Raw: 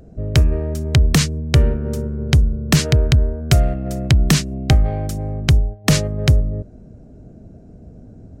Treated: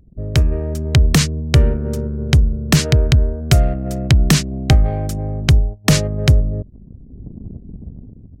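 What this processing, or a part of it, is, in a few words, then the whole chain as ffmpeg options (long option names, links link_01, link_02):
voice memo with heavy noise removal: -af "anlmdn=3.98,dynaudnorm=framelen=120:gausssize=11:maxgain=13dB,volume=-1dB"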